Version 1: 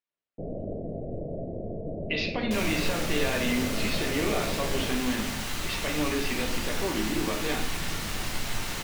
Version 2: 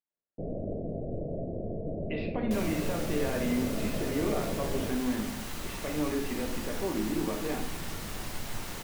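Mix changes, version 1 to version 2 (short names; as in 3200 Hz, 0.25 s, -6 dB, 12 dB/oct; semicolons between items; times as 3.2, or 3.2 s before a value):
speech: add air absorption 440 m; second sound: send -6.5 dB; master: add bell 3300 Hz -6.5 dB 2.8 oct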